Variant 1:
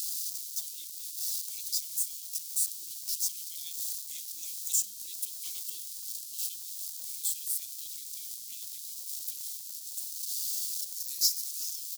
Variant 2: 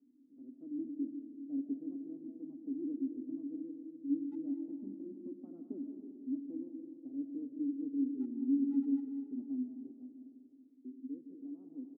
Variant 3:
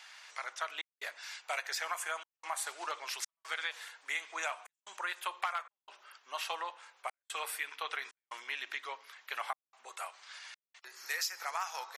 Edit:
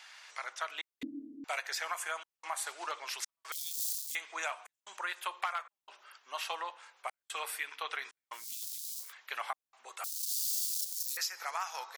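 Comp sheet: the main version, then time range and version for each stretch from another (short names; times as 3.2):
3
1.03–1.44 from 2
3.52–4.15 from 1
8.4–9.05 from 1, crossfade 0.16 s
10.04–11.17 from 1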